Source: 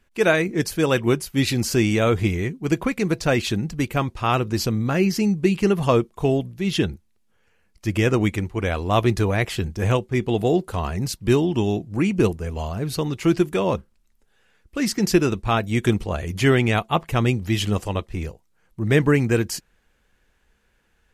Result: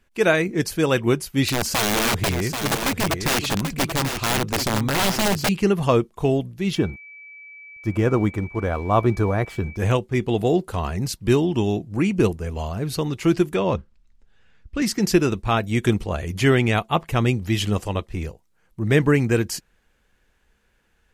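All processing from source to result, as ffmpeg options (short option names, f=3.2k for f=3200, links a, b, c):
-filter_complex "[0:a]asettb=1/sr,asplit=3[a][b][c];[a]atrim=end=1.484[d];[b]atrim=start=1.48:end=5.49,asetpts=PTS-STARTPTS,afade=t=in:d=0.004:c=qsin,afade=t=out:st=4.006:d=0.004:c=qsin,aeval=exprs='(mod(5.96*val(0)+1,2)-1)/5.96':c=same,aecho=1:1:785:0.447,atrim=end_sample=176841[e];[c]atrim=start=5.486[f];[d][e]acrossfade=d=0.004:c1=hsin:c2=qsin[g];[g][f]acrossfade=d=0.004:c1=qsin:c2=hsin,asettb=1/sr,asplit=3[h][i][j];[h]atrim=end=6.754[k];[i]atrim=start=6.75:end=9.77,asetpts=PTS-STARTPTS,afade=t=in:d=0.004:c=qsin,afade=t=out:st=3.016:d=0.004:c=qsin,highshelf=f=1.7k:t=q:w=1.5:g=-9,aeval=exprs='sgn(val(0))*max(abs(val(0))-0.00376,0)':c=same,aeval=exprs='val(0)+0.01*sin(2*PI*2300*n/s)':c=same[l];[j]atrim=start=9.766[m];[k][l]acrossfade=d=0.004:c1=hsin:c2=qsin[n];[n][m]acrossfade=d=0.004:c1=qsin:c2=hsin,asettb=1/sr,asplit=3[o][p][q];[o]atrim=end=13.554[r];[p]atrim=start=13.55:end=14.82,asetpts=PTS-STARTPTS,afade=t=in:d=0.004:c=qsin,afade=t=out:st=1.266:d=0.004:c=qsin,lowpass=5.8k,asubboost=boost=8:cutoff=210[s];[q]atrim=start=14.816[t];[r][s]acrossfade=d=0.004:c1=hsin:c2=qsin[u];[u][t]acrossfade=d=0.004:c1=qsin:c2=hsin"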